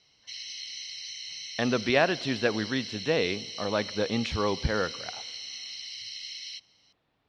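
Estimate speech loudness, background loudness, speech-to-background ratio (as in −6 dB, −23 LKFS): −28.5 LKFS, −37.0 LKFS, 8.5 dB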